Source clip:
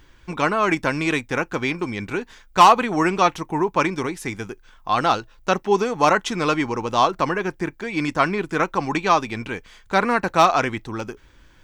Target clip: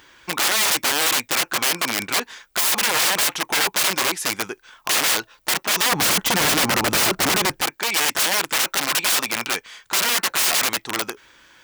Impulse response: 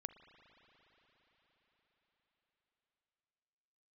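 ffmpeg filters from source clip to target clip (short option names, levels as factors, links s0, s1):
-af "aeval=exprs='(mod(11.9*val(0)+1,2)-1)/11.9':c=same,asetnsamples=n=441:p=0,asendcmd='5.92 highpass f 120;7.61 highpass f 940',highpass=f=730:p=1,volume=2.66"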